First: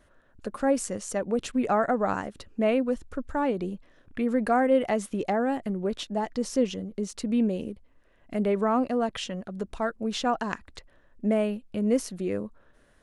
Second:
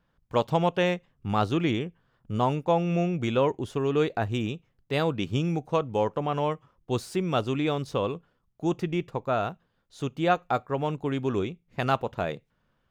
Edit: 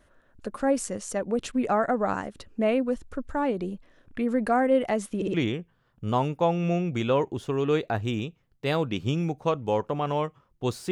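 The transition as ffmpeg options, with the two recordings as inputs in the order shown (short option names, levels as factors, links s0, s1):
-filter_complex "[0:a]apad=whole_dur=10.91,atrim=end=10.91,asplit=3[s0][s1][s2];[s0]atrim=end=5.222[s3];[s1]atrim=start=5.158:end=5.222[s4];[s2]atrim=start=5.158:end=5.222[s5];[1:a]atrim=start=1.608:end=7.18[s6];[s3][s4]acrossfade=d=0.004:c1=hsin:c2=hsin[s7];[s7][s5]acrossfade=d=0.004:c1=hsin:c2=hsin[s8];[s8][s6]acrossfade=d=0.004:c1=hsin:c2=hsin"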